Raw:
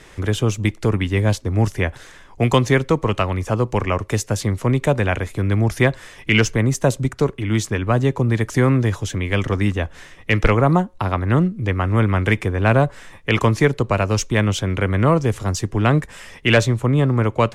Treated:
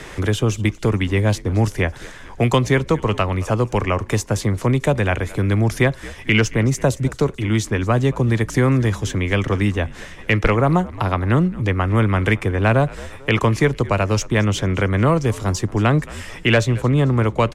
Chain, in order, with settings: frequency-shifting echo 221 ms, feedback 37%, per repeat -64 Hz, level -21 dB; three bands compressed up and down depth 40%

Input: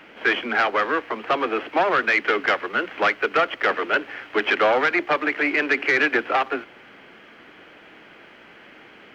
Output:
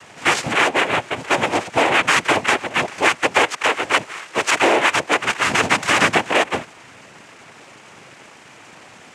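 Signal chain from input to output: 3.45–5.49 s: high-pass 440 Hz 12 dB/octave; noise-vocoded speech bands 4; trim +4 dB

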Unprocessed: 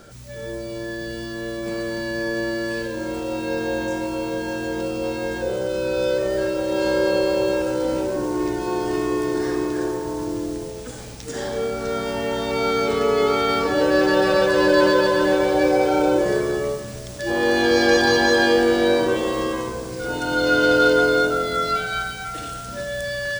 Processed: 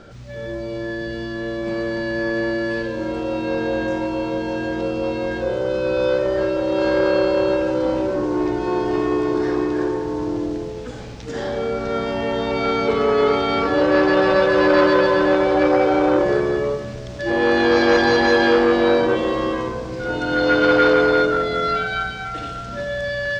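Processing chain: distance through air 160 m; de-hum 64.78 Hz, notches 38; transformer saturation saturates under 840 Hz; trim +4 dB

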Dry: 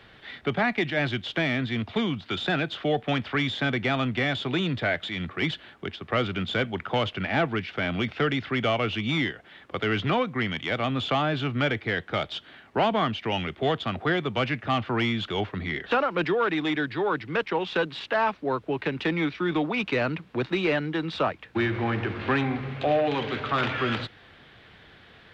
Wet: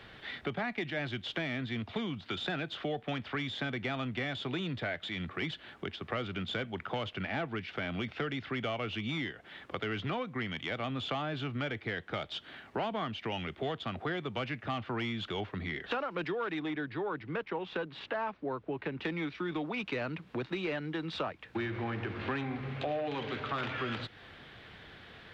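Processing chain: 16.59–19.04 s: low-pass 2 kHz 6 dB/octave; compression 2.5:1, threshold -37 dBFS, peak gain reduction 12 dB

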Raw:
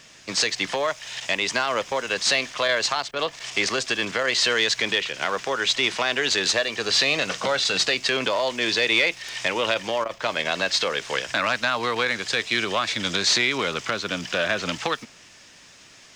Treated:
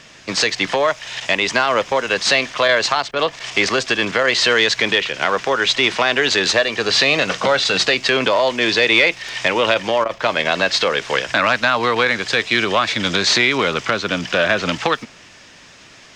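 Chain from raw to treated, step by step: low-pass 3.5 kHz 6 dB/octave; trim +8 dB

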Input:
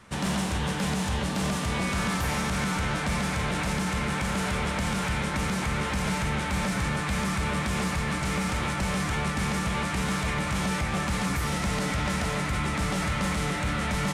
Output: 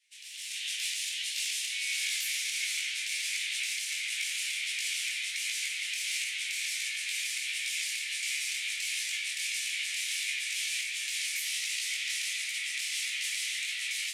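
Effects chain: steep high-pass 2.2 kHz 48 dB/octave; level rider gain up to 15.5 dB; detune thickener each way 50 cents; trim -8 dB

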